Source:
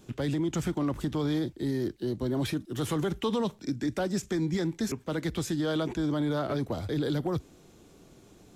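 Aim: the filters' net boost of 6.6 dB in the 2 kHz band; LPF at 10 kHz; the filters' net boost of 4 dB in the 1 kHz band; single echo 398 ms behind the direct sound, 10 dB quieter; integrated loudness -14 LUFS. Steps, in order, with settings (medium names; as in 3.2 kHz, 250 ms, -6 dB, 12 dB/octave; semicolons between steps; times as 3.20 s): low-pass 10 kHz; peaking EQ 1 kHz +3 dB; peaking EQ 2 kHz +7.5 dB; delay 398 ms -10 dB; trim +15.5 dB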